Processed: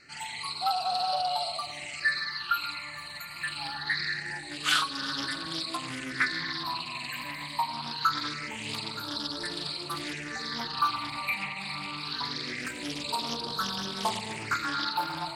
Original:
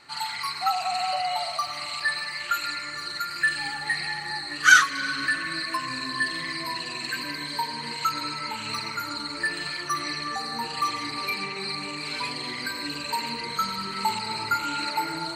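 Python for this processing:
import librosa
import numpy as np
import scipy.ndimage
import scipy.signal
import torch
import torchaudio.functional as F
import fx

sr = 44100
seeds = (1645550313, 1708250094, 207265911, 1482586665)

y = fx.phaser_stages(x, sr, stages=6, low_hz=390.0, high_hz=2100.0, hz=0.24, feedback_pct=5)
y = fx.doppler_dist(y, sr, depth_ms=0.41)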